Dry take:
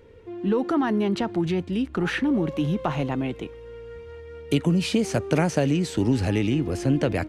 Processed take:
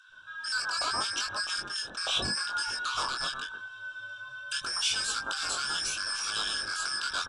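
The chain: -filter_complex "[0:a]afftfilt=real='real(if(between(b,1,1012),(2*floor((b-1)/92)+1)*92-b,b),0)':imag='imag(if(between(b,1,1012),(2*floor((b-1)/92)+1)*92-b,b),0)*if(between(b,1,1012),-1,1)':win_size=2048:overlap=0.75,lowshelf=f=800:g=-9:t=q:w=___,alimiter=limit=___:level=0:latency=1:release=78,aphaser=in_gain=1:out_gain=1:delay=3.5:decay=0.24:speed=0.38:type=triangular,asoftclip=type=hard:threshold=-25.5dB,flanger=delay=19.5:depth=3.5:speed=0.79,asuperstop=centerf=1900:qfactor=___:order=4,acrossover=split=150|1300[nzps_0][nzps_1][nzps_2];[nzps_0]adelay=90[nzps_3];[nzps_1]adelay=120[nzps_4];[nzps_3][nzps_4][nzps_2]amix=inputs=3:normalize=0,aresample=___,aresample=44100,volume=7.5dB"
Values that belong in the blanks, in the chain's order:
1.5, -13dB, 1.9, 22050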